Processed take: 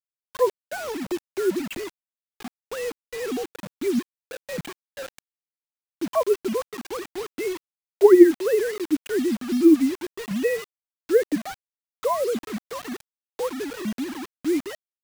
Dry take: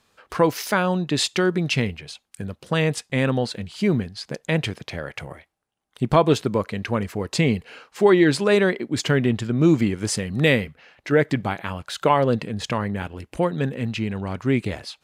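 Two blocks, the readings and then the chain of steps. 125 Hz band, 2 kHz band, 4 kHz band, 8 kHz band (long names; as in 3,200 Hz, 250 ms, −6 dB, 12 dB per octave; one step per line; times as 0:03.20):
−21.5 dB, −9.5 dB, −10.5 dB, −6.0 dB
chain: three sine waves on the formant tracks
spectral tilt −3 dB per octave
bit reduction 5 bits
level −6 dB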